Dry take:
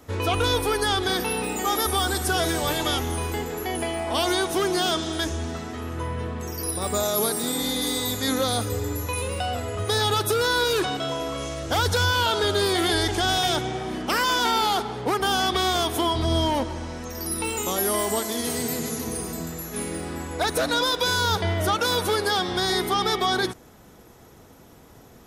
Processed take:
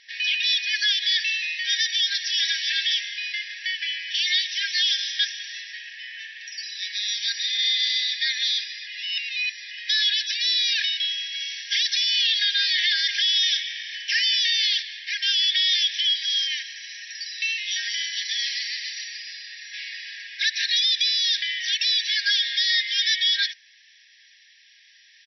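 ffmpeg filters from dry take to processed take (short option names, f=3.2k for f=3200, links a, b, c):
-filter_complex "[0:a]asplit=3[a][b][c];[a]atrim=end=8.872[d];[b]atrim=start=8.868:end=9.712,asetpts=PTS-STARTPTS,areverse[e];[c]atrim=start=9.708[f];[d][e]acrossfade=d=0.004:c1=hsin:c2=hsin[g];[g][f]acrossfade=d=0.004:c1=hsin:c2=hsin,afftfilt=real='re*between(b*sr/4096,1600,5900)':imag='im*between(b*sr/4096,1600,5900)':win_size=4096:overlap=0.75,aecho=1:1:3.3:0.41,alimiter=limit=-21dB:level=0:latency=1:release=20,volume=8dB"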